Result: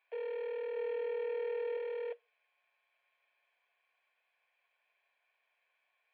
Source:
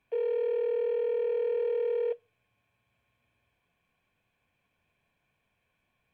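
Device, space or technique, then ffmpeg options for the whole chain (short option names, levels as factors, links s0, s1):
musical greeting card: -filter_complex "[0:a]asettb=1/sr,asplit=3[s0][s1][s2];[s0]atrim=end=0.764[s3];[s1]atrim=start=0.76:end=1.77,asetpts=PTS-STARTPTS,afade=t=in:d=0.004:c=qsin,afade=t=out:st=1.006:d=0.004:c=qsin,aecho=1:1:6.6:0.45,atrim=end_sample=44541[s4];[s2]atrim=start=1.766[s5];[s3][s4]acrossfade=d=0.004:c1=hsin:c2=qsin[s6];[s6][s5]acrossfade=d=0.004:c1=qsin:c2=hsin,aresample=11025,aresample=44100,highpass=f=570:w=0.5412,highpass=f=570:w=1.3066,equalizer=f=2000:t=o:w=0.45:g=5.5,volume=0.75"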